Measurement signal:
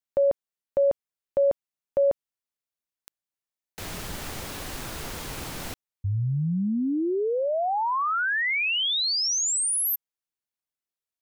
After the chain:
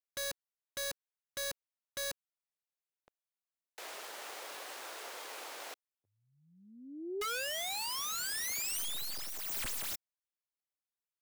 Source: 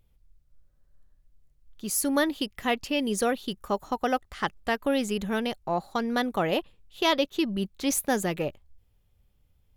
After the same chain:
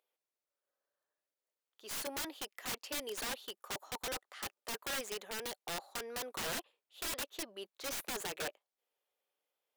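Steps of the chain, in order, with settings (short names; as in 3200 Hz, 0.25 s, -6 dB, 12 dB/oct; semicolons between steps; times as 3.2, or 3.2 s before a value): tracing distortion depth 0.083 ms; HPF 450 Hz 24 dB/oct; high shelf 2500 Hz -3 dB; wrapped overs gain 27 dB; gain -6 dB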